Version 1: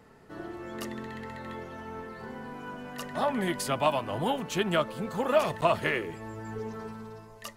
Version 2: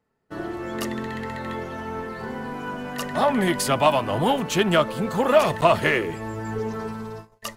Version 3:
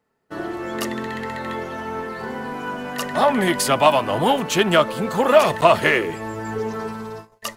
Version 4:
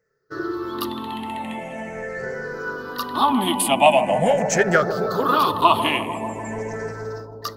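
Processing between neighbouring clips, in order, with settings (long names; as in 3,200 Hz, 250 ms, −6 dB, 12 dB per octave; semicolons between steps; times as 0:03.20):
noise gate −46 dBFS, range −28 dB; in parallel at −7.5 dB: soft clipping −29.5 dBFS, distortion −6 dB; on the sum: level +6 dB
low-shelf EQ 160 Hz −8.5 dB; level +4 dB
rippled gain that drifts along the octave scale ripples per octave 0.55, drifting −0.43 Hz, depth 20 dB; on a send: bucket-brigade delay 147 ms, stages 1,024, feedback 82%, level −10 dB; on the sum: level −5.5 dB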